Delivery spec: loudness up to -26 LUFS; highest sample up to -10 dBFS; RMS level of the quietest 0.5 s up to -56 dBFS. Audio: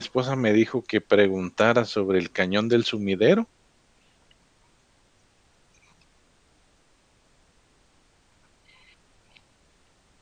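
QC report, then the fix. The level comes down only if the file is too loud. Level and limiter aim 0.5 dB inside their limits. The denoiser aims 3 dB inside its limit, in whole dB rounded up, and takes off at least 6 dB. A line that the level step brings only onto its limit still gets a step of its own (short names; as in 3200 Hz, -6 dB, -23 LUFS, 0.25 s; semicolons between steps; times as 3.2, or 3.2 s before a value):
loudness -22.5 LUFS: fail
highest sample -5.0 dBFS: fail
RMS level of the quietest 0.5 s -62 dBFS: OK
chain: gain -4 dB; limiter -10.5 dBFS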